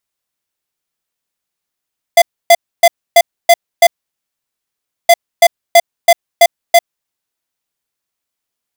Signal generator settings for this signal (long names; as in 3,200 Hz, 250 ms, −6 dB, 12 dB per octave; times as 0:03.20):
beeps in groups square 684 Hz, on 0.05 s, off 0.28 s, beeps 6, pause 1.22 s, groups 2, −4.5 dBFS